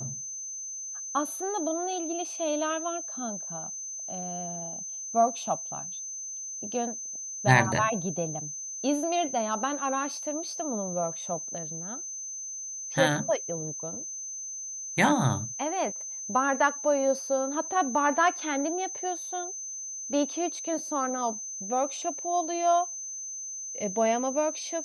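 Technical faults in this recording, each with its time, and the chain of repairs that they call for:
whistle 6,200 Hz −35 dBFS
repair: notch filter 6,200 Hz, Q 30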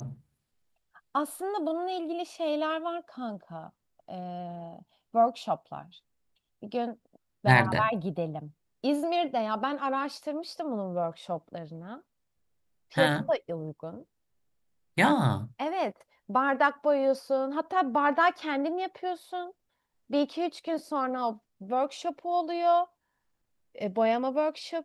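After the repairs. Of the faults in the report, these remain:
none of them is left

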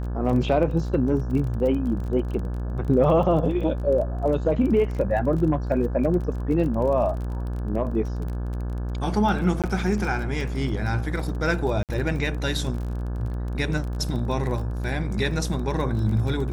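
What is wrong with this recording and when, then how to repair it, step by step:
mains buzz 60 Hz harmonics 29 −28 dBFS
surface crackle 25 per second −31 dBFS
0:09.62–0:09.64: drop-out 17 ms
0:11.83–0:11.89: drop-out 58 ms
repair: click removal
hum removal 60 Hz, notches 29
repair the gap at 0:09.62, 17 ms
repair the gap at 0:11.83, 58 ms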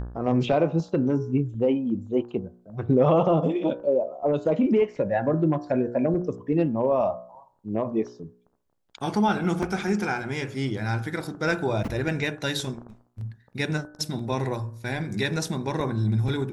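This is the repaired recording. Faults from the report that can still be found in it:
none of them is left

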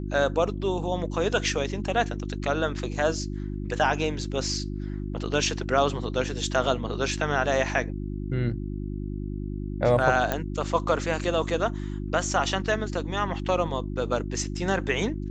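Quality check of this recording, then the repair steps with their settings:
mains hum 50 Hz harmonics 7 −32 dBFS
0:10.32: click −11 dBFS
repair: click removal
hum removal 50 Hz, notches 7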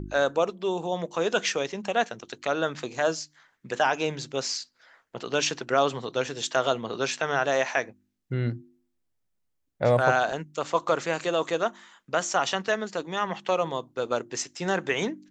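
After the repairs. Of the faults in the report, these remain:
none of them is left

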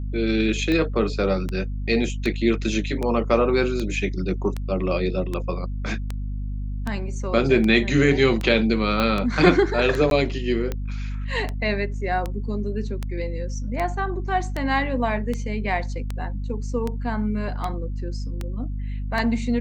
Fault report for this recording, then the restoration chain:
mains hum 50 Hz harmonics 5 −28 dBFS
scratch tick 78 rpm −14 dBFS
0:09.00: click −10 dBFS
0:10.10–0:10.11: drop-out 12 ms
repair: click removal
hum removal 50 Hz, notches 5
repair the gap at 0:10.10, 12 ms

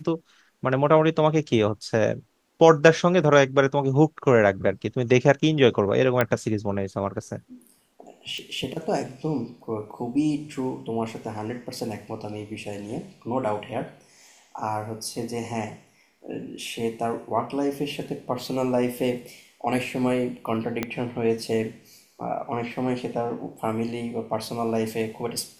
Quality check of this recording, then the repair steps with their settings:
0:06.21: click −8 dBFS
0:08.38: click
0:20.83: click −11 dBFS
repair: click removal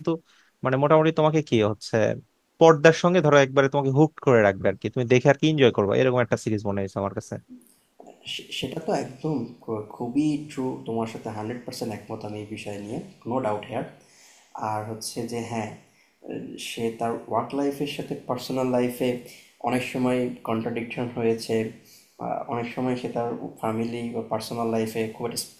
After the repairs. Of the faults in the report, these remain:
0:20.83: click

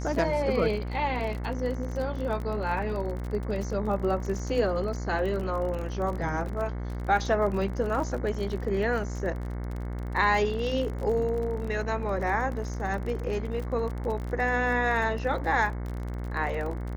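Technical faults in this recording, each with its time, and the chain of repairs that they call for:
mains buzz 60 Hz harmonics 37 −33 dBFS
surface crackle 30 per second −33 dBFS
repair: click removal
hum removal 60 Hz, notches 37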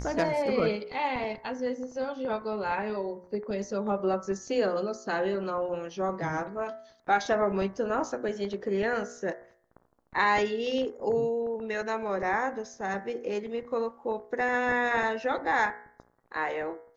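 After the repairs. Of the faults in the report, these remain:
none of them is left

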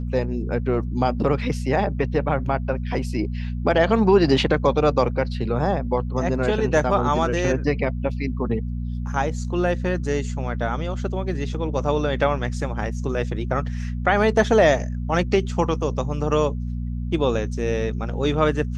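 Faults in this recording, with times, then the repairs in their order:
mains hum 60 Hz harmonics 4 −27 dBFS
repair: hum removal 60 Hz, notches 4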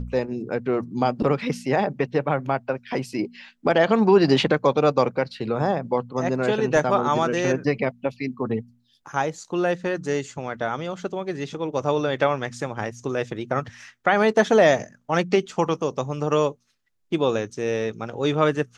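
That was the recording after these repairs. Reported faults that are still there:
none of them is left

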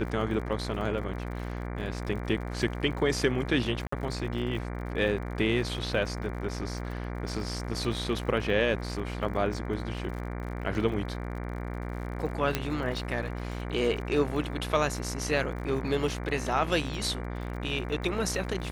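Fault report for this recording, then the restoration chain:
mains buzz 60 Hz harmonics 39 −35 dBFS
surface crackle 59 per second −39 dBFS
0:03.87–0:03.92: drop-out 54 ms
0:12.55: click −11 dBFS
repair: click removal
hum removal 60 Hz, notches 39
repair the gap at 0:03.87, 54 ms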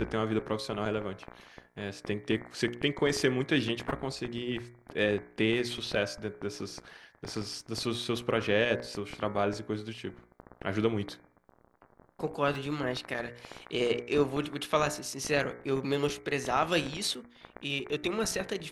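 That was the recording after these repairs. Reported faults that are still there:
0:12.55: click

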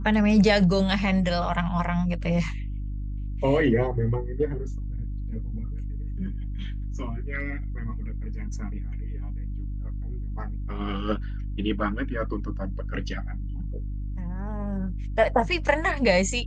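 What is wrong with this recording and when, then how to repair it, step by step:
mains hum 50 Hz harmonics 6 −31 dBFS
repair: hum removal 50 Hz, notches 6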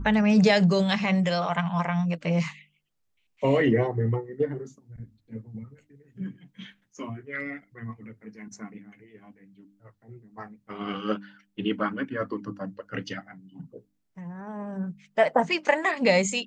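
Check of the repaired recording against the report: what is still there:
none of them is left

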